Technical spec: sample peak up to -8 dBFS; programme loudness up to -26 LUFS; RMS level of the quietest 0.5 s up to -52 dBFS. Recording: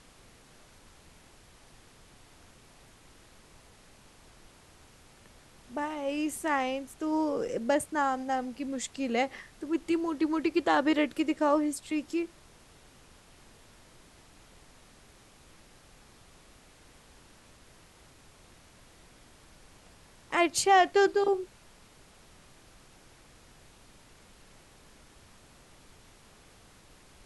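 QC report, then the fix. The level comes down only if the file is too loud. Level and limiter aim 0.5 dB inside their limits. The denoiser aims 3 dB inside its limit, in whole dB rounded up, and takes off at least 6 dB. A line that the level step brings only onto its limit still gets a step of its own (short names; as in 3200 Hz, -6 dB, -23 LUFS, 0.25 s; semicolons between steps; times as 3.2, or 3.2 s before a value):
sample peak -11.0 dBFS: OK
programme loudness -29.0 LUFS: OK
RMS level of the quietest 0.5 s -57 dBFS: OK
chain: none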